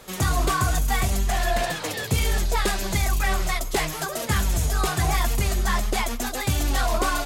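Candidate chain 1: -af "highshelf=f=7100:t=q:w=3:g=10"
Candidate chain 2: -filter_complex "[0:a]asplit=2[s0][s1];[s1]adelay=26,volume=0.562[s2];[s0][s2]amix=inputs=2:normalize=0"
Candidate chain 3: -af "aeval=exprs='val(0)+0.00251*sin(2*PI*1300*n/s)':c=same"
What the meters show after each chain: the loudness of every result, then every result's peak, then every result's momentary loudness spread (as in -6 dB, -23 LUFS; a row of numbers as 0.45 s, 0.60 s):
-19.5 LUFS, -23.0 LUFS, -24.5 LUFS; -4.5 dBFS, -10.0 dBFS, -14.0 dBFS; 3 LU, 3 LU, 3 LU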